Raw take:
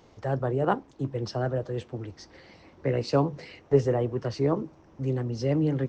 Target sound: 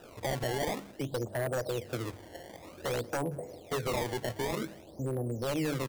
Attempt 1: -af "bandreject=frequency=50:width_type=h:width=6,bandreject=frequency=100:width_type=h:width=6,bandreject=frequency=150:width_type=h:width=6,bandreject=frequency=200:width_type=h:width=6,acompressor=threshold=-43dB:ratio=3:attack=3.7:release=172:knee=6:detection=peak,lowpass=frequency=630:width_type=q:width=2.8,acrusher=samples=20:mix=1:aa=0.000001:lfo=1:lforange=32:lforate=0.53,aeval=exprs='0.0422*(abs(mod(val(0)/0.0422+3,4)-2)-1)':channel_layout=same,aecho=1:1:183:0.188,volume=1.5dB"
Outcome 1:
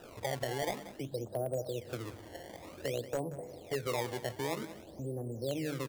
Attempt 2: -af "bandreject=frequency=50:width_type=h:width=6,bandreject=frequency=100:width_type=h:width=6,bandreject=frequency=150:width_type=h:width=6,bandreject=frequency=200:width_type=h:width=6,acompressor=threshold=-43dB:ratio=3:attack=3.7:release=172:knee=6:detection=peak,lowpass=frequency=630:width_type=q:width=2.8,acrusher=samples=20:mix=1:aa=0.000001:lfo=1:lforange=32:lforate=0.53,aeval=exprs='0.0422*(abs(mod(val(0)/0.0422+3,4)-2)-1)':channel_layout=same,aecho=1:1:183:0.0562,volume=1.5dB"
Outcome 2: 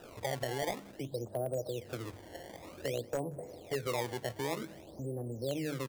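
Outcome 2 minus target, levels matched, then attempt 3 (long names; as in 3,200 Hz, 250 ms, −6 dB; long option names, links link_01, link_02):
downward compressor: peak gain reduction +5.5 dB
-af "bandreject=frequency=50:width_type=h:width=6,bandreject=frequency=100:width_type=h:width=6,bandreject=frequency=150:width_type=h:width=6,bandreject=frequency=200:width_type=h:width=6,acompressor=threshold=-34.5dB:ratio=3:attack=3.7:release=172:knee=6:detection=peak,lowpass=frequency=630:width_type=q:width=2.8,acrusher=samples=20:mix=1:aa=0.000001:lfo=1:lforange=32:lforate=0.53,aeval=exprs='0.0422*(abs(mod(val(0)/0.0422+3,4)-2)-1)':channel_layout=same,aecho=1:1:183:0.0562,volume=1.5dB"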